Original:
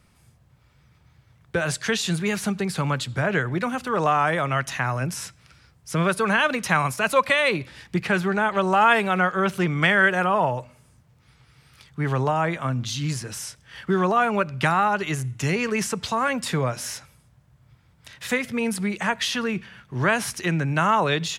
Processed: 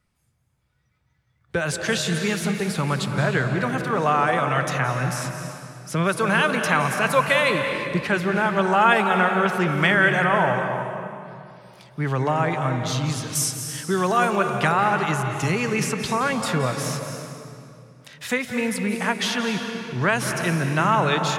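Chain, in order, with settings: spectral noise reduction 13 dB; 13.35–14.36 s: tone controls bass -3 dB, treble +12 dB; reverberation RT60 2.6 s, pre-delay 163 ms, DRR 4.5 dB

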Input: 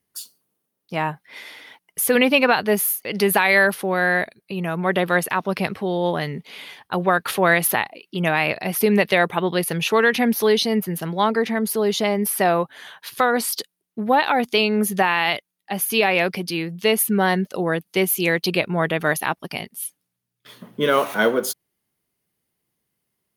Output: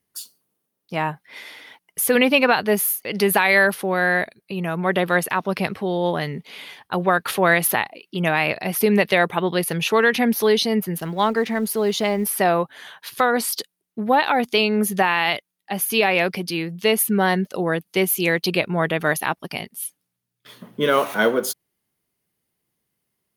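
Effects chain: 10.98–12.37 s: companding laws mixed up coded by A

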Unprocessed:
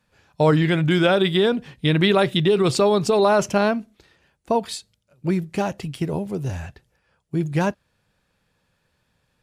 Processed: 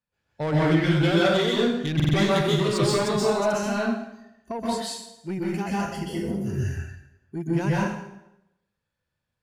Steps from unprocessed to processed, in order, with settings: spectral noise reduction 16 dB; 3.12–4.59 s: compression 4:1, threshold -21 dBFS, peak gain reduction 6.5 dB; saturation -17 dBFS, distortion -12 dB; plate-style reverb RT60 0.84 s, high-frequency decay 0.85×, pre-delay 115 ms, DRR -7 dB; buffer glitch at 1.95 s, samples 2048, times 3; trim -6 dB

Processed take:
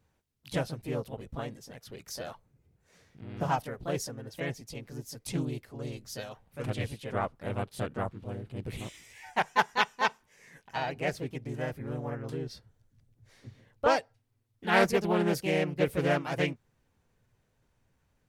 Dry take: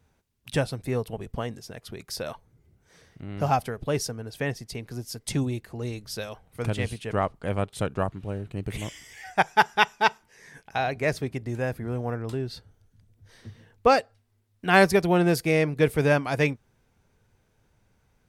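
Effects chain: harmony voices +3 st -2 dB; loudspeaker Doppler distortion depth 0.19 ms; trim -8 dB

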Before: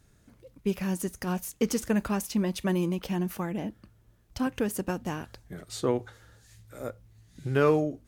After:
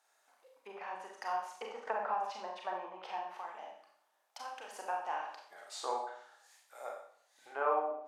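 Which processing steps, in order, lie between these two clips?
3.25–4.68 s: compression 3:1, threshold -36 dBFS, peak gain reduction 10 dB; low-pass that closes with the level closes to 1.2 kHz, closed at -24 dBFS; ladder high-pass 710 Hz, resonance 60%; Schroeder reverb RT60 0.59 s, combs from 29 ms, DRR -0.5 dB; 1.87–2.31 s: three bands compressed up and down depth 100%; trim +3 dB

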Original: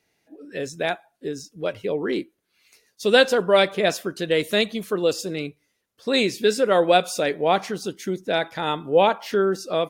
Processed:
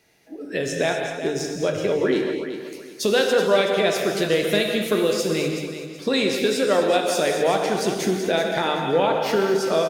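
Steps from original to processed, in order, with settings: compression 3:1, threshold -30 dBFS, peak gain reduction 14 dB; on a send: feedback delay 377 ms, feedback 29%, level -10 dB; on the sum: gated-style reverb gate 280 ms flat, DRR 2 dB; trim +8 dB

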